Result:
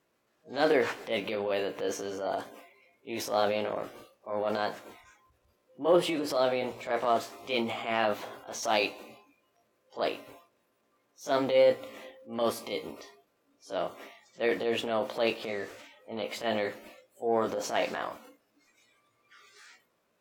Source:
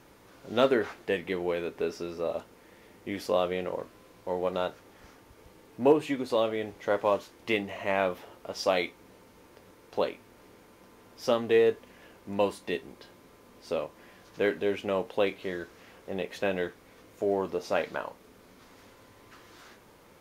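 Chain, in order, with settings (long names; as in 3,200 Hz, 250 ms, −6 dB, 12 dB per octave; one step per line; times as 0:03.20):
pitch shift by two crossfaded delay taps +2.5 semitones
transient designer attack −8 dB, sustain +6 dB
low-shelf EQ 83 Hz −11.5 dB
mains-hum notches 60/120 Hz
on a send at −20.5 dB: convolution reverb RT60 1.9 s, pre-delay 35 ms
on the sum: noise reduction from a noise print of the clip's start 18 dB
level +2 dB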